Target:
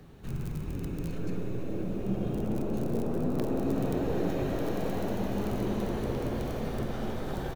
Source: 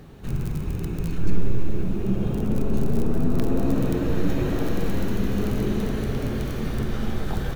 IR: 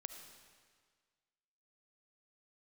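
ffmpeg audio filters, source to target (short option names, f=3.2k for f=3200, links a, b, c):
-filter_complex "[0:a]acrossover=split=100|790[a][b][c];[a]acompressor=threshold=-27dB:ratio=6[d];[b]asplit=9[e][f][g][h][i][j][k][l][m];[f]adelay=425,afreqshift=140,volume=-6dB[n];[g]adelay=850,afreqshift=280,volume=-10.4dB[o];[h]adelay=1275,afreqshift=420,volume=-14.9dB[p];[i]adelay=1700,afreqshift=560,volume=-19.3dB[q];[j]adelay=2125,afreqshift=700,volume=-23.7dB[r];[k]adelay=2550,afreqshift=840,volume=-28.2dB[s];[l]adelay=2975,afreqshift=980,volume=-32.6dB[t];[m]adelay=3400,afreqshift=1120,volume=-37.1dB[u];[e][n][o][p][q][r][s][t][u]amix=inputs=9:normalize=0[v];[d][v][c]amix=inputs=3:normalize=0,volume=-6.5dB"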